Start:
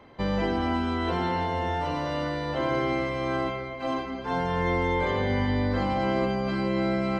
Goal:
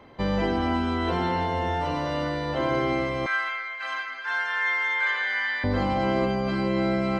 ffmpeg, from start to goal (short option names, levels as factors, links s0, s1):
-filter_complex "[0:a]asettb=1/sr,asplit=3[s0][s1][s2];[s0]atrim=end=3.264[s3];[s1]atrim=start=3.26:end=5.64,asetpts=PTS-STARTPTS,afade=t=in:d=0.004:c=qsin,afade=t=out:st=2.376:d=0.004:c=qsin,highpass=f=1600:t=q:w=4[s4];[s2]atrim=start=5.636[s5];[s3][s4]acrossfade=d=0.004:c1=hsin:c2=qsin[s6];[s6][s5]acrossfade=d=0.004:c1=qsin:c2=hsin,volume=1.19"